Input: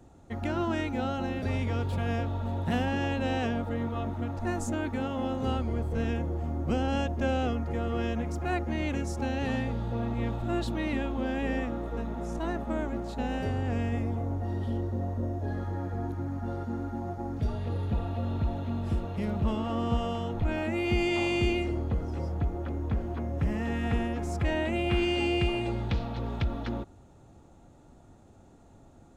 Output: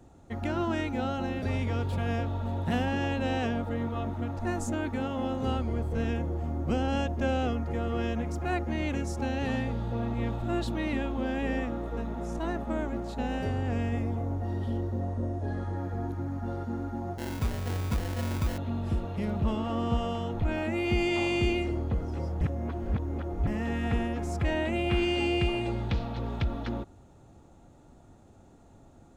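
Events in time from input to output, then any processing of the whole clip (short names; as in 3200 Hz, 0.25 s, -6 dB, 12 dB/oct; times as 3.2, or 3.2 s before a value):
15–15.77 careless resampling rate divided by 2×, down none, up filtered
17.18–18.58 sample-rate reducer 1200 Hz
22.41–23.47 reverse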